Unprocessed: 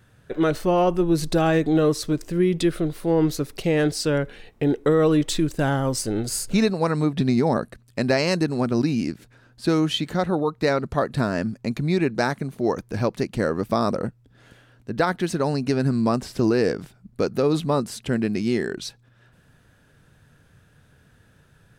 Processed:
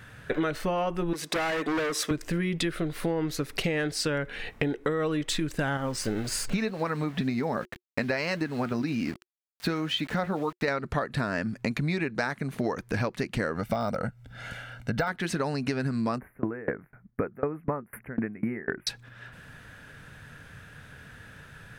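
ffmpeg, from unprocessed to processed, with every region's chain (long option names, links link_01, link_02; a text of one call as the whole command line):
ffmpeg -i in.wav -filter_complex "[0:a]asettb=1/sr,asplit=3[link_01][link_02][link_03];[link_01]atrim=end=1.134[link_04];[link_02]atrim=start=1.13:end=2.11,asetpts=PTS-STARTPTS,afade=type=in:duration=0.004:curve=qsin,afade=type=out:start_time=0.976:duration=0.004:curve=qsin,highpass=350,bandreject=frequency=4300:width=8.4,volume=26.5dB,asoftclip=hard,volume=-26.5dB[link_05];[link_03]atrim=start=2.106[link_06];[link_04][link_05]acrossfade=duration=0.004:curve1=hsin:curve2=qsin[link_07];[link_07][link_06]acrossfade=duration=0.004:curve1=qsin:curve2=hsin,asettb=1/sr,asplit=3[link_08][link_09][link_10];[link_08]atrim=end=5.774[link_11];[link_09]atrim=start=5.77:end=10.68,asetpts=PTS-STARTPTS,afade=type=in:duration=0.004:curve=qsin,afade=type=out:start_time=4.906:duration=0.004:curve=qsin,highshelf=frequency=7000:gain=-9.5,flanger=delay=3:depth=2.7:regen=74:speed=1.9:shape=triangular,aeval=exprs='val(0)*gte(abs(val(0)),0.00631)':channel_layout=same[link_12];[link_10]atrim=start=10.676[link_13];[link_11][link_12]acrossfade=duration=0.004:curve1=hsin:curve2=qsin[link_14];[link_14][link_13]acrossfade=duration=0.004:curve1=qsin:curve2=hsin,asettb=1/sr,asplit=3[link_15][link_16][link_17];[link_15]atrim=end=13.554[link_18];[link_16]atrim=start=13.55:end=15.08,asetpts=PTS-STARTPTS,afade=type=in:duration=0.004:curve=qsin,afade=type=out:start_time=1.526:duration=0.004:curve=qsin,deesser=0.9,aecho=1:1:1.4:0.66,atrim=end_sample=67473[link_19];[link_17]atrim=start=15.076[link_20];[link_18][link_19]acrossfade=duration=0.004:curve1=hsin:curve2=qsin[link_21];[link_21][link_20]acrossfade=duration=0.004:curve1=qsin:curve2=hsin,asettb=1/sr,asplit=3[link_22][link_23][link_24];[link_22]atrim=end=16.184[link_25];[link_23]atrim=start=16.18:end=18.87,asetpts=PTS-STARTPTS,afade=type=in:duration=0.004:curve=qsin,afade=type=out:start_time=2.686:duration=0.004:curve=qsin,asuperstop=centerf=5200:order=12:qfactor=0.6,aeval=exprs='val(0)*pow(10,-30*if(lt(mod(4*n/s,1),2*abs(4)/1000),1-mod(4*n/s,1)/(2*abs(4)/1000),(mod(4*n/s,1)-2*abs(4)/1000)/(1-2*abs(4)/1000))/20)':channel_layout=same[link_26];[link_24]atrim=start=18.866[link_27];[link_25][link_26]acrossfade=duration=0.004:curve1=hsin:curve2=qsin[link_28];[link_28][link_27]acrossfade=duration=0.004:curve1=qsin:curve2=hsin,equalizer=frequency=1900:width_type=o:width=1.6:gain=8.5,bandreject=frequency=360:width=12,acompressor=threshold=-31dB:ratio=12,volume=6dB" out.wav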